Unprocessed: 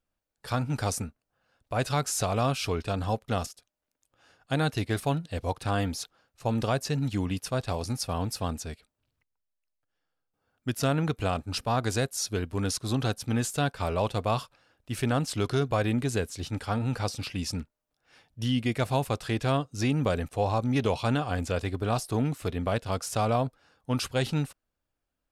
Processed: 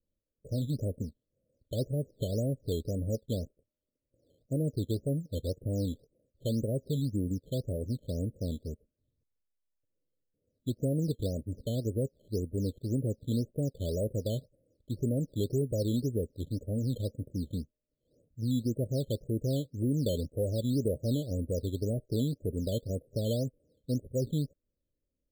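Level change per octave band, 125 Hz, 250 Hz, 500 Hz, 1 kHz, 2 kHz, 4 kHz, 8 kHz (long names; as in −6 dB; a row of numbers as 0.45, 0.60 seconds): −2.5 dB, −2.5 dB, −4.0 dB, below −25 dB, below −40 dB, −10.5 dB, −12.5 dB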